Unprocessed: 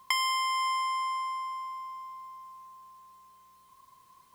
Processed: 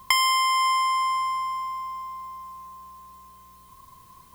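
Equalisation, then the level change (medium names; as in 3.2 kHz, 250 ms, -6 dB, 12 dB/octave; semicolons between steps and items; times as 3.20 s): bass shelf 110 Hz +7 dB; bass shelf 310 Hz +8.5 dB; treble shelf 11 kHz +7 dB; +6.5 dB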